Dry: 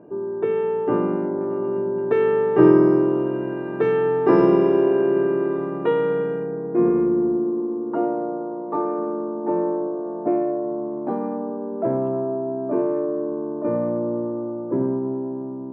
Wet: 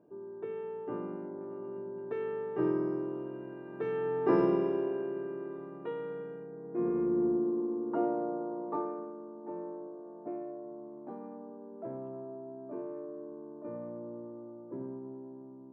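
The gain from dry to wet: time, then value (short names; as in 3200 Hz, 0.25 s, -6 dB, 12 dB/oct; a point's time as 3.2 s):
3.64 s -17 dB
4.32 s -10 dB
5.21 s -18 dB
6.5 s -18 dB
7.25 s -8 dB
8.67 s -8 dB
9.14 s -18.5 dB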